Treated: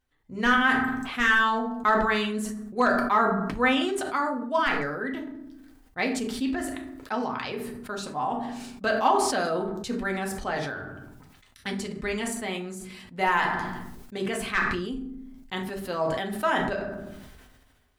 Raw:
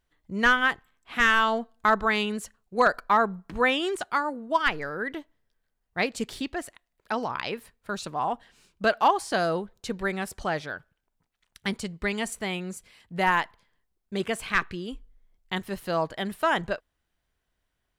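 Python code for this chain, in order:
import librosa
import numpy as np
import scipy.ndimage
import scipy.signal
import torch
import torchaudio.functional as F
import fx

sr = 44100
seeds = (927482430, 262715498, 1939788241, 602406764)

y = fx.rev_fdn(x, sr, rt60_s=0.51, lf_ratio=1.5, hf_ratio=0.6, size_ms=23.0, drr_db=1.5)
y = fx.sustainer(y, sr, db_per_s=34.0)
y = y * librosa.db_to_amplitude(-4.0)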